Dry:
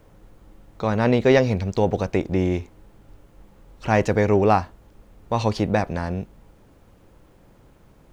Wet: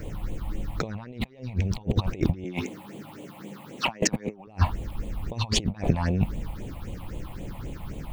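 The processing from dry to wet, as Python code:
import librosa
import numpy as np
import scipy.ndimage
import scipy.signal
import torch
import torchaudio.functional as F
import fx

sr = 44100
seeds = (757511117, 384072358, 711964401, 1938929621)

y = fx.highpass(x, sr, hz=170.0, slope=24, at=(2.44, 4.47))
y = fx.over_compress(y, sr, threshold_db=-31.0, ratio=-0.5)
y = fx.phaser_stages(y, sr, stages=6, low_hz=390.0, high_hz=1500.0, hz=3.8, feedback_pct=25)
y = F.gain(torch.from_numpy(y), 6.5).numpy()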